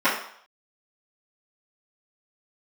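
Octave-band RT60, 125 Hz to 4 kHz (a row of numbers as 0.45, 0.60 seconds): 0.35, 0.45, 0.60, 0.65, 0.60, 0.60 seconds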